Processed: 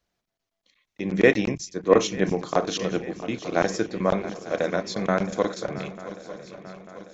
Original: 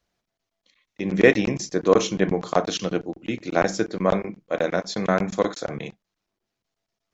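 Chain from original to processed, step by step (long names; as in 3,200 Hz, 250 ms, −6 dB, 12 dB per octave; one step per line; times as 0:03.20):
feedback echo with a long and a short gap by turns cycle 894 ms, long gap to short 3 to 1, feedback 55%, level −15 dB
0:01.55–0:02.18: multiband upward and downward expander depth 100%
level −2 dB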